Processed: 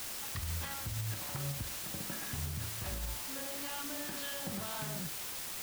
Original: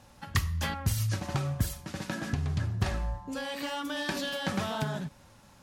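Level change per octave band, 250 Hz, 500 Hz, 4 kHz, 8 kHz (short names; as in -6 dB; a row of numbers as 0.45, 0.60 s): -10.0, -9.0, -4.5, +2.5 dB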